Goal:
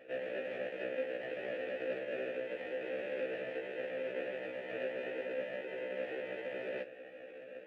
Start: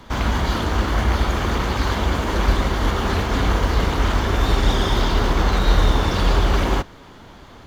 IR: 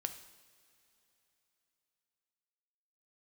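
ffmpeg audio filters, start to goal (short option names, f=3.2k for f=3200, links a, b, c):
-filter_complex "[0:a]equalizer=f=340:t=o:w=1.4:g=-12,bandreject=f=560:w=12,areverse,acompressor=threshold=-27dB:ratio=5,areverse,acrusher=samples=40:mix=1:aa=0.000001,highpass=f=350:t=q:w=0.5412,highpass=f=350:t=q:w=1.307,lowpass=f=3.3k:t=q:w=0.5176,lowpass=f=3.3k:t=q:w=0.7071,lowpass=f=3.3k:t=q:w=1.932,afreqshift=-160,acrusher=bits=5:mode=log:mix=0:aa=0.000001,asoftclip=type=tanh:threshold=-32.5dB,asplit=3[a][b][c];[a]bandpass=f=530:t=q:w=8,volume=0dB[d];[b]bandpass=f=1.84k:t=q:w=8,volume=-6dB[e];[c]bandpass=f=2.48k:t=q:w=8,volume=-9dB[f];[d][e][f]amix=inputs=3:normalize=0,afftfilt=real='re*1.73*eq(mod(b,3),0)':imag='im*1.73*eq(mod(b,3),0)':win_size=2048:overlap=0.75,volume=15.5dB"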